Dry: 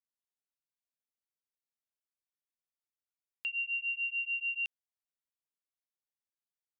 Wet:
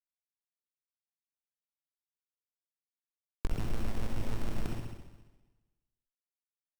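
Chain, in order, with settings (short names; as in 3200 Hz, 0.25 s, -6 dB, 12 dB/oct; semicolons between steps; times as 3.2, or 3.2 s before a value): notch 2900 Hz, Q 7.5; loudest bins only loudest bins 32; bit-crush 8-bit; spring tank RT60 1.2 s, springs 58 ms, chirp 55 ms, DRR -7.5 dB; running maximum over 17 samples; gain +14.5 dB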